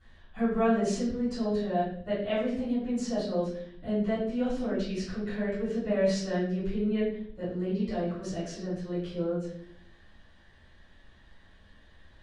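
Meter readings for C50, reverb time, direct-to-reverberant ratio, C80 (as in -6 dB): 2.0 dB, 0.60 s, -13.0 dB, 6.0 dB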